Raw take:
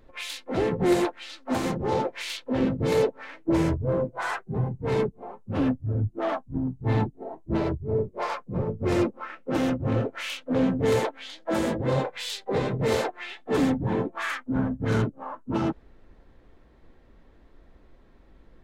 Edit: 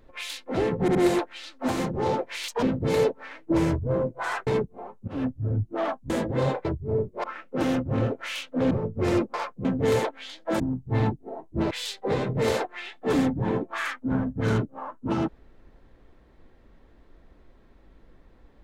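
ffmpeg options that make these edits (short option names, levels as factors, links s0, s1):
-filter_complex "[0:a]asplit=15[s0][s1][s2][s3][s4][s5][s6][s7][s8][s9][s10][s11][s12][s13][s14];[s0]atrim=end=0.882[s15];[s1]atrim=start=0.808:end=0.882[s16];[s2]atrim=start=0.808:end=2.344[s17];[s3]atrim=start=2.34:end=2.61,asetpts=PTS-STARTPTS,asetrate=80262,aresample=44100,atrim=end_sample=6542,asetpts=PTS-STARTPTS[s18];[s4]atrim=start=2.606:end=4.452[s19];[s5]atrim=start=4.908:end=5.52,asetpts=PTS-STARTPTS,afade=t=out:st=0.608:d=0.004:c=hsin:silence=0.149624[s20];[s6]atrim=start=5.52:end=6.542,asetpts=PTS-STARTPTS,afade=t=in:d=0.26:silence=0.149624[s21];[s7]atrim=start=11.598:end=12.152[s22];[s8]atrim=start=7.648:end=8.242[s23];[s9]atrim=start=9.178:end=10.652[s24];[s10]atrim=start=8.548:end=9.182[s25];[s11]atrim=start=8.238:end=8.552[s26];[s12]atrim=start=10.648:end=11.602[s27];[s13]atrim=start=6.538:end=7.652[s28];[s14]atrim=start=12.148[s29];[s15][s16]acrossfade=d=0.004:c1=hsin:c2=hsin[s30];[s30][s17]acrossfade=d=0.004:c1=hsin:c2=hsin[s31];[s31][s18]acrossfade=d=0.004:c1=hsin:c2=hsin[s32];[s32][s19]acrossfade=d=0.004:c1=hsin:c2=hsin[s33];[s20][s21]concat=n=2:v=0:a=1[s34];[s33][s34]acrossfade=d=0.004:c1=hsin:c2=hsin[s35];[s35][s22]acrossfade=d=0.004:c1=hsin:c2=hsin[s36];[s36][s23]acrossfade=d=0.004:c1=hsin:c2=hsin[s37];[s37][s24]acrossfade=d=0.004:c1=hsin:c2=hsin[s38];[s38][s25]acrossfade=d=0.004:c1=hsin:c2=hsin[s39];[s39][s26]acrossfade=d=0.004:c1=hsin:c2=hsin[s40];[s40][s27]acrossfade=d=0.004:c1=hsin:c2=hsin[s41];[s41][s28]acrossfade=d=0.004:c1=hsin:c2=hsin[s42];[s42][s29]acrossfade=d=0.004:c1=hsin:c2=hsin"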